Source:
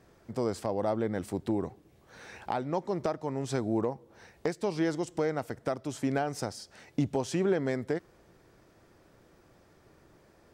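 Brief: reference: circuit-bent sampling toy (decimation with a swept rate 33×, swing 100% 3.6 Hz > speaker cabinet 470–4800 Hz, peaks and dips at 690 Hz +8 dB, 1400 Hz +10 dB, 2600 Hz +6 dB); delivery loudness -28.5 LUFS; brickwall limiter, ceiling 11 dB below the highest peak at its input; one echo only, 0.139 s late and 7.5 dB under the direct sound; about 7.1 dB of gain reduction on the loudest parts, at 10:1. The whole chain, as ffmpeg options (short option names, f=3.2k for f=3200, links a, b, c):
-af "acompressor=threshold=-31dB:ratio=10,alimiter=level_in=6.5dB:limit=-24dB:level=0:latency=1,volume=-6.5dB,aecho=1:1:139:0.422,acrusher=samples=33:mix=1:aa=0.000001:lfo=1:lforange=33:lforate=3.6,highpass=470,equalizer=f=690:t=q:w=4:g=8,equalizer=f=1.4k:t=q:w=4:g=10,equalizer=f=2.6k:t=q:w=4:g=6,lowpass=f=4.8k:w=0.5412,lowpass=f=4.8k:w=1.3066,volume=13.5dB"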